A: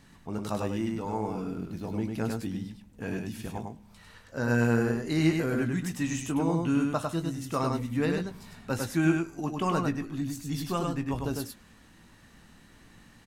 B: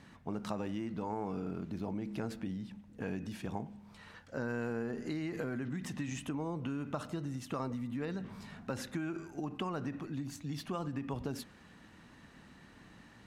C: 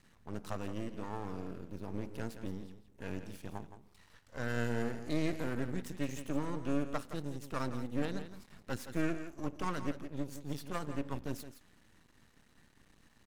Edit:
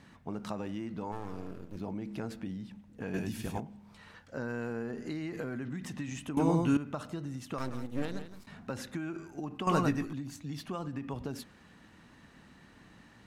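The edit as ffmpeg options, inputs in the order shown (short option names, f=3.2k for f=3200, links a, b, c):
-filter_complex "[2:a]asplit=2[a][b];[0:a]asplit=3[c][d][e];[1:a]asplit=6[f][g][h][i][j][k];[f]atrim=end=1.122[l];[a]atrim=start=1.118:end=1.762[m];[g]atrim=start=1.758:end=3.142[n];[c]atrim=start=3.138:end=3.602[o];[h]atrim=start=3.598:end=6.372[p];[d]atrim=start=6.368:end=6.772[q];[i]atrim=start=6.768:end=7.582[r];[b]atrim=start=7.578:end=8.472[s];[j]atrim=start=8.468:end=9.672[t];[e]atrim=start=9.668:end=10.132[u];[k]atrim=start=10.128[v];[l][m]acrossfade=d=0.004:c1=hsin:c2=hsin[w];[w][n]acrossfade=d=0.004:c1=hsin:c2=hsin[x];[x][o]acrossfade=d=0.004:c1=hsin:c2=hsin[y];[y][p]acrossfade=d=0.004:c1=hsin:c2=hsin[z];[z][q]acrossfade=d=0.004:c1=hsin:c2=hsin[aa];[aa][r]acrossfade=d=0.004:c1=hsin:c2=hsin[ab];[ab][s]acrossfade=d=0.004:c1=hsin:c2=hsin[ac];[ac][t]acrossfade=d=0.004:c1=hsin:c2=hsin[ad];[ad][u]acrossfade=d=0.004:c1=hsin:c2=hsin[ae];[ae][v]acrossfade=d=0.004:c1=hsin:c2=hsin"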